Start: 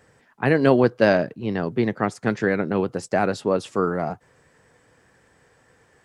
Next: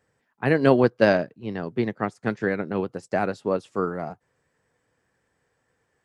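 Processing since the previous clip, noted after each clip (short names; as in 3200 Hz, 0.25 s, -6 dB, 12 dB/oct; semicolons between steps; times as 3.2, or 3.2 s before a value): upward expander 1.5:1, over -40 dBFS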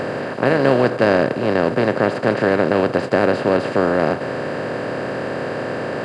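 per-bin compression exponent 0.2; gain -2 dB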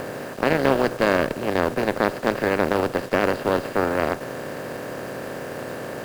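bit-crush 6-bit; added harmonics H 4 -17 dB, 7 -25 dB, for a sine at -0.5 dBFS; gain -4 dB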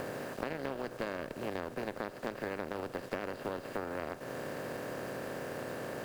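compressor, threshold -26 dBFS, peak gain reduction 13.5 dB; gain -7.5 dB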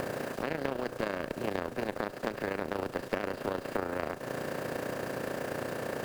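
AM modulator 29 Hz, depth 45%; gain +7 dB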